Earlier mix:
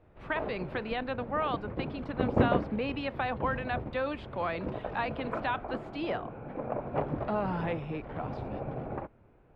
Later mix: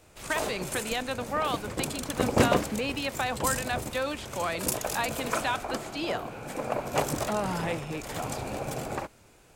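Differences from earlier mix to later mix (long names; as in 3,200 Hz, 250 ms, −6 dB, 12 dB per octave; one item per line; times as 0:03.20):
background: remove head-to-tape spacing loss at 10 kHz 42 dB
master: remove high-frequency loss of the air 380 metres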